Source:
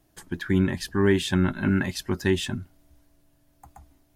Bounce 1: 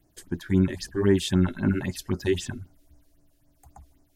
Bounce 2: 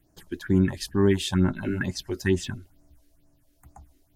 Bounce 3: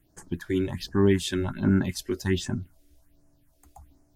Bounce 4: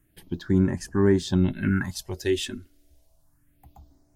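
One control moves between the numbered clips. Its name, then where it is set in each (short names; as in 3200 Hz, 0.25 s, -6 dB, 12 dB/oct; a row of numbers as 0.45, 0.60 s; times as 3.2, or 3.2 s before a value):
phaser, rate: 3.8, 2.2, 1.3, 0.29 Hz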